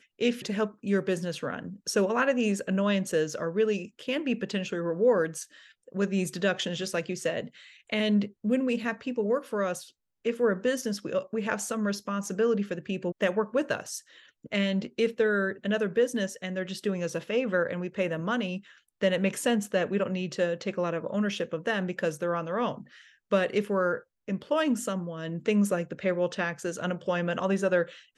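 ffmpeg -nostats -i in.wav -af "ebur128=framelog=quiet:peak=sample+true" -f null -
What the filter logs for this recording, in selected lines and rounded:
Integrated loudness:
  I:         -29.0 LUFS
  Threshold: -39.2 LUFS
Loudness range:
  LRA:         1.9 LU
  Threshold: -49.2 LUFS
  LRA low:   -30.1 LUFS
  LRA high:  -28.2 LUFS
Sample peak:
  Peak:      -12.0 dBFS
True peak:
  Peak:      -11.9 dBFS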